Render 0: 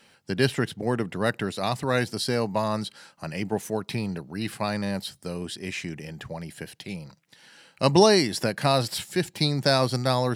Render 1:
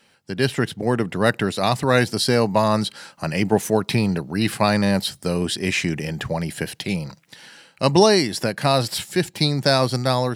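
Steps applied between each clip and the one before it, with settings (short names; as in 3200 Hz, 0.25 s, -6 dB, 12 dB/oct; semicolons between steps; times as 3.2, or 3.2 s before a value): AGC gain up to 12 dB; gain -1 dB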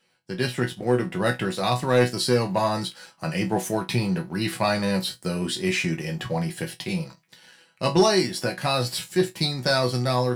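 resonator bank B2 sus4, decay 0.2 s; sample leveller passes 1; gain +4.5 dB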